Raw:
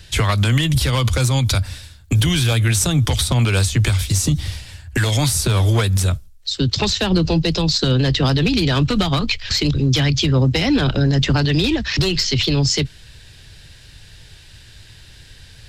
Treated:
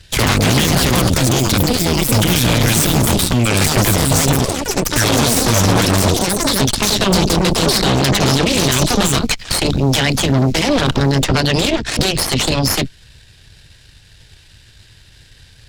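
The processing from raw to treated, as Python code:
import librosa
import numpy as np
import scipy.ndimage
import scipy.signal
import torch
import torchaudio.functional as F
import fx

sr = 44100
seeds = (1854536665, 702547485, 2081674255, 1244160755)

y = fx.echo_pitch(x, sr, ms=103, semitones=6, count=2, db_per_echo=-3.0)
y = fx.cheby_harmonics(y, sr, harmonics=(6,), levels_db=(-7,), full_scale_db=-4.5)
y = y * librosa.db_to_amplitude(-2.0)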